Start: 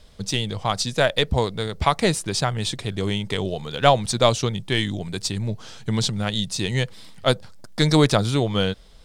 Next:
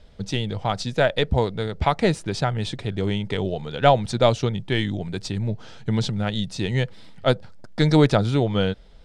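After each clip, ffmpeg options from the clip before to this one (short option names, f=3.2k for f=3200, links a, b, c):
-af "aemphasis=mode=reproduction:type=75fm,bandreject=f=1.1k:w=7.5"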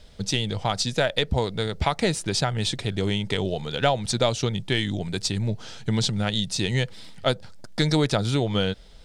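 -af "highshelf=f=3.5k:g=12,acompressor=threshold=-20dB:ratio=2.5"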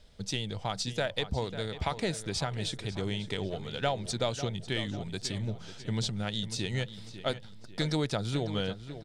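-filter_complex "[0:a]asplit=2[a][b];[b]adelay=546,lowpass=f=4.3k:p=1,volume=-12dB,asplit=2[c][d];[d]adelay=546,lowpass=f=4.3k:p=1,volume=0.42,asplit=2[e][f];[f]adelay=546,lowpass=f=4.3k:p=1,volume=0.42,asplit=2[g][h];[h]adelay=546,lowpass=f=4.3k:p=1,volume=0.42[i];[a][c][e][g][i]amix=inputs=5:normalize=0,volume=-8.5dB"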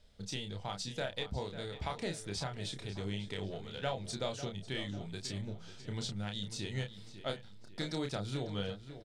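-filter_complex "[0:a]asplit=2[a][b];[b]adelay=30,volume=-5dB[c];[a][c]amix=inputs=2:normalize=0,volume=-7.5dB"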